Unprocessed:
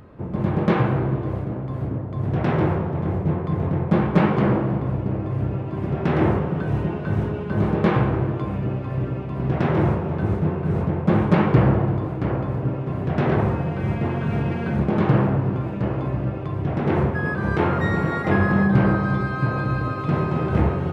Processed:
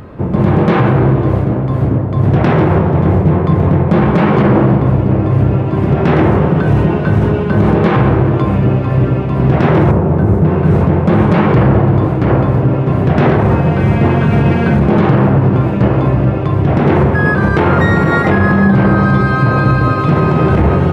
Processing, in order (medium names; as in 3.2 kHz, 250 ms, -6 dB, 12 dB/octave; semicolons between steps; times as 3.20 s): 9.91–10.45 s: peaking EQ 3.5 kHz -11.5 dB 2.3 oct; loudness maximiser +14.5 dB; trim -1 dB